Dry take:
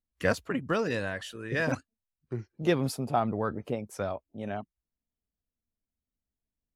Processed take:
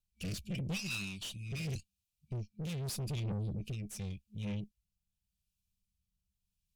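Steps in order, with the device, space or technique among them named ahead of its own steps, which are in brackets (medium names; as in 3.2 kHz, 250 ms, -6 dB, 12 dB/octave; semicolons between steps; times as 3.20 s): 0.75–1.25 s: high-pass 570 Hz -> 250 Hz 6 dB/octave; FFT band-reject 210–2300 Hz; overdriven rotary cabinet (valve stage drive 45 dB, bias 0.6; rotary cabinet horn 0.85 Hz); trim +11 dB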